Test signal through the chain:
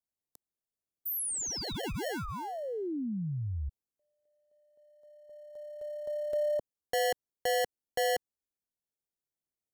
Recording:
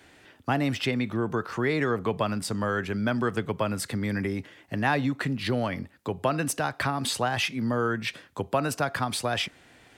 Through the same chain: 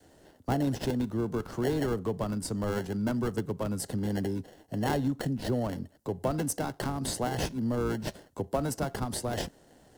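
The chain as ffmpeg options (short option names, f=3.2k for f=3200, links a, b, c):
-filter_complex "[0:a]adynamicequalizer=threshold=0.00794:dfrequency=690:dqfactor=1.6:tfrequency=690:tqfactor=1.6:attack=5:release=100:ratio=0.375:range=2.5:mode=cutabove:tftype=bell,acrossover=split=220|1100|4300[a][b][c][d];[c]acrusher=samples=36:mix=1:aa=0.000001[e];[a][b][e][d]amix=inputs=4:normalize=0,volume=-2dB"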